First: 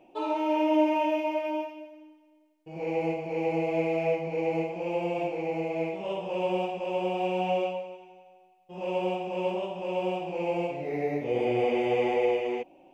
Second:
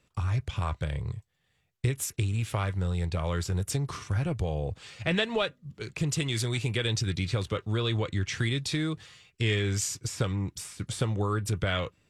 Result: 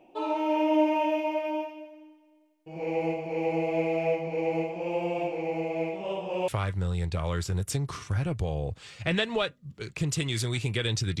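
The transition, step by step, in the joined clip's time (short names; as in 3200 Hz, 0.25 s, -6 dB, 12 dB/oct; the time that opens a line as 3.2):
first
6.48 switch to second from 2.48 s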